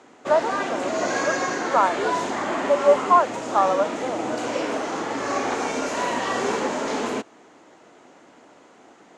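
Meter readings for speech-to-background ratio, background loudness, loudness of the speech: 3.0 dB, −26.0 LKFS, −23.0 LKFS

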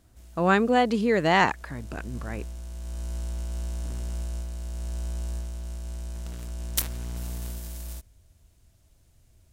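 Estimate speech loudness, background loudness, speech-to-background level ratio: −22.5 LKFS, −35.0 LKFS, 12.5 dB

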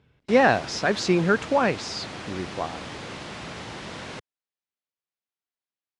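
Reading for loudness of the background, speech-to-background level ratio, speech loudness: −37.0 LKFS, 14.0 dB, −23.0 LKFS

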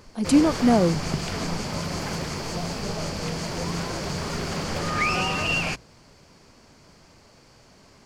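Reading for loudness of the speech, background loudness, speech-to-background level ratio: −21.0 LKFS, −28.0 LKFS, 7.0 dB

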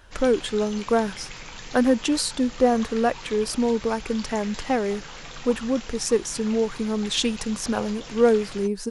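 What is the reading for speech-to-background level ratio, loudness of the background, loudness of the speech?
15.0 dB, −39.0 LKFS, −24.0 LKFS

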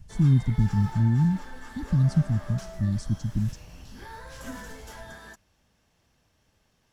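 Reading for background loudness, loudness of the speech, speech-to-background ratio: −43.5 LKFS, −25.0 LKFS, 18.5 dB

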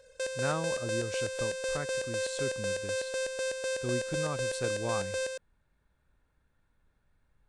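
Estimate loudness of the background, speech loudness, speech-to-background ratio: −33.5 LKFS, −38.5 LKFS, −5.0 dB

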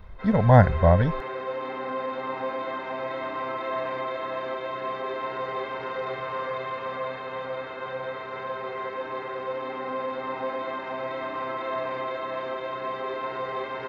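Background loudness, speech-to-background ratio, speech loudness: −32.0 LKFS, 12.0 dB, −20.0 LKFS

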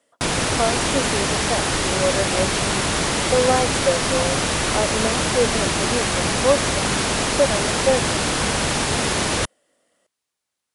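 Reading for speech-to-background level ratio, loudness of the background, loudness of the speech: −4.0 dB, −20.5 LKFS, −24.5 LKFS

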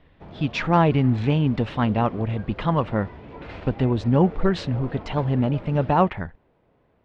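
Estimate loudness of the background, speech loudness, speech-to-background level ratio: −40.0 LKFS, −23.0 LKFS, 17.0 dB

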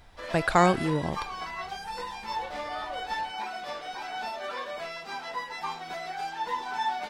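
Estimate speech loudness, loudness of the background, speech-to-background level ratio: −25.5 LKFS, −35.0 LKFS, 9.5 dB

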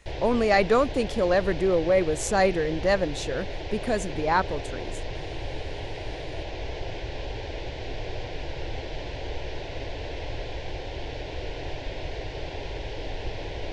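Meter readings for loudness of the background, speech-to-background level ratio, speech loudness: −35.5 LKFS, 10.5 dB, −25.0 LKFS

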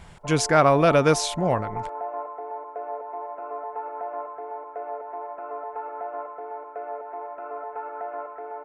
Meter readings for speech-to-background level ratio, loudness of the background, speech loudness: 14.0 dB, −34.5 LKFS, −20.5 LKFS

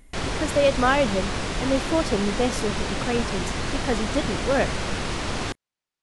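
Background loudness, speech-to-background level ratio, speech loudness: −28.0 LKFS, 2.5 dB, −25.5 LKFS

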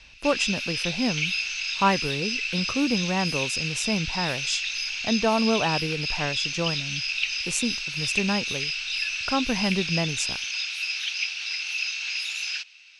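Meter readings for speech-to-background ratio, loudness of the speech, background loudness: −1.0 dB, −28.0 LKFS, −27.0 LKFS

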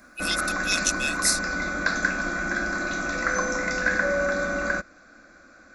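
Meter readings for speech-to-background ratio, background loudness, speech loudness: 0.0 dB, −26.0 LKFS, −26.0 LKFS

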